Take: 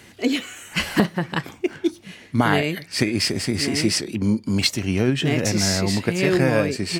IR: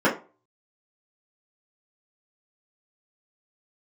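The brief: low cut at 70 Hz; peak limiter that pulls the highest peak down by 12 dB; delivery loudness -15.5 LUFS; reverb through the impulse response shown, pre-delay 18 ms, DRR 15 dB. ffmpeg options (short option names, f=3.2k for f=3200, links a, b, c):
-filter_complex "[0:a]highpass=70,alimiter=limit=-14.5dB:level=0:latency=1,asplit=2[a][b];[1:a]atrim=start_sample=2205,adelay=18[c];[b][c]afir=irnorm=-1:irlink=0,volume=-33.5dB[d];[a][d]amix=inputs=2:normalize=0,volume=9.5dB"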